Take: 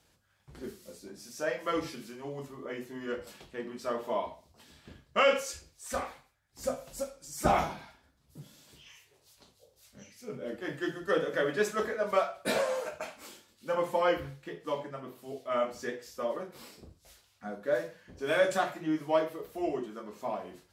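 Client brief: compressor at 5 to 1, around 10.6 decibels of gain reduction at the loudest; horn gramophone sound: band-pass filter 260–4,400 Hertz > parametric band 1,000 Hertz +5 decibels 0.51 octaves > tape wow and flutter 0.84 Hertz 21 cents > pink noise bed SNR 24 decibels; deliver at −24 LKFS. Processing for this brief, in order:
downward compressor 5 to 1, threshold −32 dBFS
band-pass filter 260–4,400 Hz
parametric band 1,000 Hz +5 dB 0.51 octaves
tape wow and flutter 0.84 Hz 21 cents
pink noise bed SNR 24 dB
level +14.5 dB

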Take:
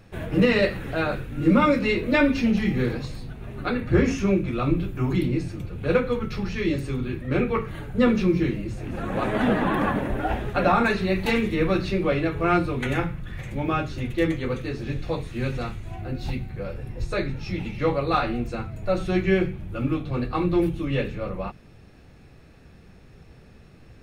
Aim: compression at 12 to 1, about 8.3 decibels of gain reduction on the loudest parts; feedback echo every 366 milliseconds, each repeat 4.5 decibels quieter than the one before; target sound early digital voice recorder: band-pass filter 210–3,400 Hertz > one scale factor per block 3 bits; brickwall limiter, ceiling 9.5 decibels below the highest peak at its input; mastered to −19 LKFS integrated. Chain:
downward compressor 12 to 1, threshold −22 dBFS
brickwall limiter −22 dBFS
band-pass filter 210–3,400 Hz
repeating echo 366 ms, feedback 60%, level −4.5 dB
one scale factor per block 3 bits
level +12.5 dB

